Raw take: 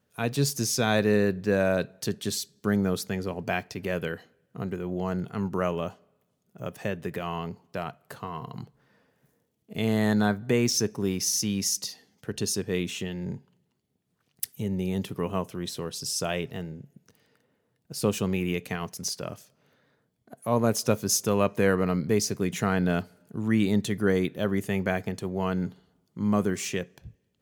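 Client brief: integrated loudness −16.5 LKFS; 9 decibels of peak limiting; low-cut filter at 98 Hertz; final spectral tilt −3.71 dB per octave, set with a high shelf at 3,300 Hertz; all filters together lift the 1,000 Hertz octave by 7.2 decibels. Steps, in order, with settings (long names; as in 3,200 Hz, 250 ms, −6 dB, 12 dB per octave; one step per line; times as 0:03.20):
high-pass filter 98 Hz
parametric band 1,000 Hz +9 dB
high-shelf EQ 3,300 Hz +5.5 dB
level +11 dB
brickwall limiter −2.5 dBFS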